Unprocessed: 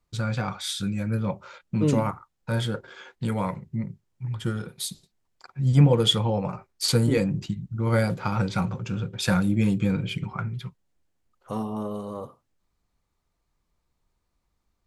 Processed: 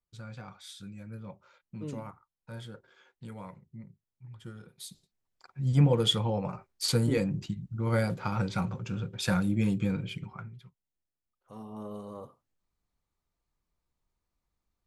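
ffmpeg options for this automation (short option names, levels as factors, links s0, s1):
-af "volume=1.68,afade=t=in:st=4.56:d=1.36:silence=0.266073,afade=t=out:st=9.82:d=0.81:silence=0.237137,afade=t=in:st=11.52:d=0.42:silence=0.334965"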